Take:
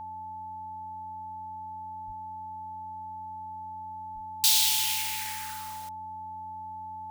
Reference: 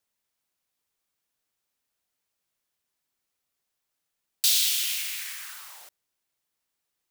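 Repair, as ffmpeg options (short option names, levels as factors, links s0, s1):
-filter_complex "[0:a]bandreject=f=91.1:t=h:w=4,bandreject=f=182.2:t=h:w=4,bandreject=f=273.3:t=h:w=4,bandreject=f=870:w=30,asplit=3[s0][s1][s2];[s0]afade=t=out:st=2.06:d=0.02[s3];[s1]highpass=f=140:w=0.5412,highpass=f=140:w=1.3066,afade=t=in:st=2.06:d=0.02,afade=t=out:st=2.18:d=0.02[s4];[s2]afade=t=in:st=2.18:d=0.02[s5];[s3][s4][s5]amix=inputs=3:normalize=0,asplit=3[s6][s7][s8];[s6]afade=t=out:st=4.14:d=0.02[s9];[s7]highpass=f=140:w=0.5412,highpass=f=140:w=1.3066,afade=t=in:st=4.14:d=0.02,afade=t=out:st=4.26:d=0.02[s10];[s8]afade=t=in:st=4.26:d=0.02[s11];[s9][s10][s11]amix=inputs=3:normalize=0"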